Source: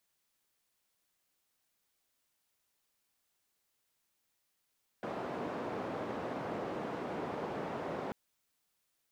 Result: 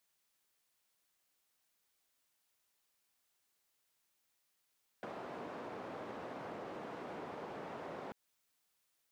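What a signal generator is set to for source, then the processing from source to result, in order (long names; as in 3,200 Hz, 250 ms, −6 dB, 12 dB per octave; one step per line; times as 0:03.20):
band-limited noise 170–680 Hz, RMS −39 dBFS 3.09 s
low-shelf EQ 380 Hz −4.5 dB
downward compressor 3 to 1, threshold −44 dBFS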